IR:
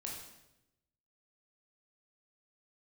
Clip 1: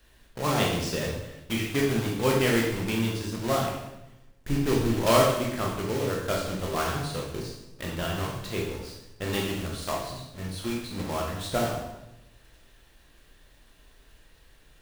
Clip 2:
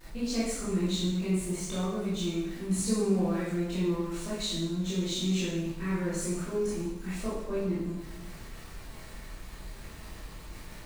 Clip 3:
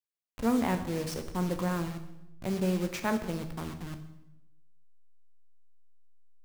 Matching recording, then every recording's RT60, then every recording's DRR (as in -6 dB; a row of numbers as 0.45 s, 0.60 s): 1; 0.90 s, 0.90 s, 0.90 s; -2.5 dB, -10.0 dB, 7.5 dB